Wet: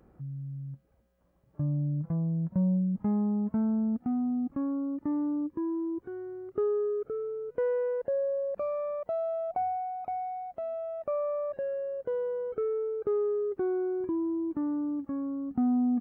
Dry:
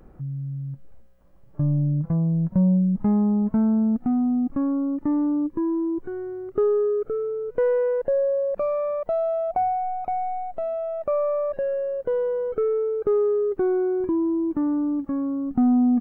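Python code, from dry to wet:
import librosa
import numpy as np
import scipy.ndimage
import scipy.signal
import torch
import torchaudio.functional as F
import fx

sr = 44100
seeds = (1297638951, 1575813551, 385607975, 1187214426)

y = scipy.signal.sosfilt(scipy.signal.butter(2, 57.0, 'highpass', fs=sr, output='sos'), x)
y = y * 10.0 ** (-7.5 / 20.0)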